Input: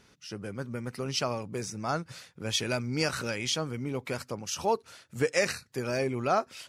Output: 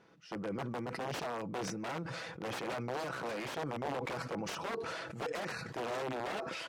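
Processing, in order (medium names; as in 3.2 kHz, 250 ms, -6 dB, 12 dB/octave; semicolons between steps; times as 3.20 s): comb 6.1 ms, depth 45%; compression 10:1, threshold -29 dBFS, peak gain reduction 10 dB; integer overflow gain 29 dB; band-pass filter 560 Hz, Q 0.61; decay stretcher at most 21 dB/s; trim +1 dB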